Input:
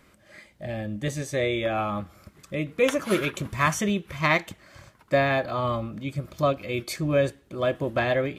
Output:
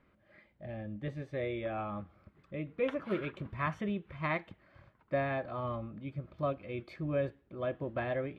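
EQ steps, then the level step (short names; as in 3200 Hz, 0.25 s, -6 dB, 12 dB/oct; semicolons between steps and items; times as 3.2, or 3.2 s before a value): air absorption 410 m; -9.0 dB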